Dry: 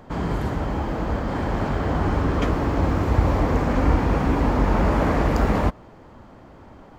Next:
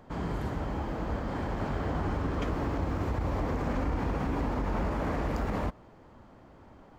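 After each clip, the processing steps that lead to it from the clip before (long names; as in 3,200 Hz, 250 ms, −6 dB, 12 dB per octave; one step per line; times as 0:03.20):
brickwall limiter −14 dBFS, peak gain reduction 8.5 dB
level −8 dB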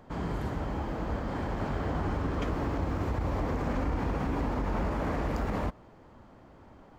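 no processing that can be heard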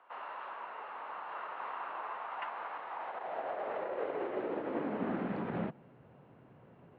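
single-sideband voice off tune −390 Hz 430–3,500 Hz
high-pass filter sweep 1,000 Hz → 120 Hz, 0:02.84–0:06.08
level −2 dB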